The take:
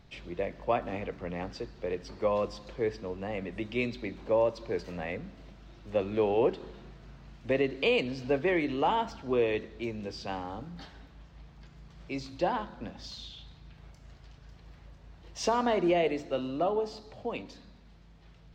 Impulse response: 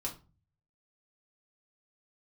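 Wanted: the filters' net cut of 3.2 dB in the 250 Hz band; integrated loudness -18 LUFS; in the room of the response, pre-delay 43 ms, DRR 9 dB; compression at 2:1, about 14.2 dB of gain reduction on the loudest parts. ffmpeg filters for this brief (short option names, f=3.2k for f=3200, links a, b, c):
-filter_complex "[0:a]equalizer=f=250:t=o:g=-4.5,acompressor=threshold=-50dB:ratio=2,asplit=2[a][b];[1:a]atrim=start_sample=2205,adelay=43[c];[b][c]afir=irnorm=-1:irlink=0,volume=-10dB[d];[a][d]amix=inputs=2:normalize=0,volume=27.5dB"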